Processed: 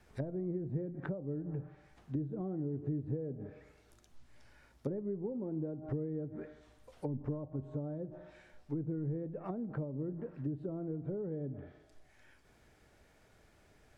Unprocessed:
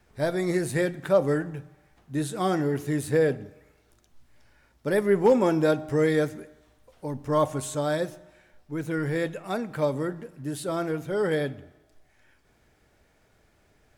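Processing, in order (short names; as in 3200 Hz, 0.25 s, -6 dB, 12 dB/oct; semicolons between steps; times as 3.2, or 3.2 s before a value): compressor 8:1, threshold -29 dBFS, peak gain reduction 14 dB; treble ducked by the level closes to 320 Hz, closed at -31 dBFS; gain -1.5 dB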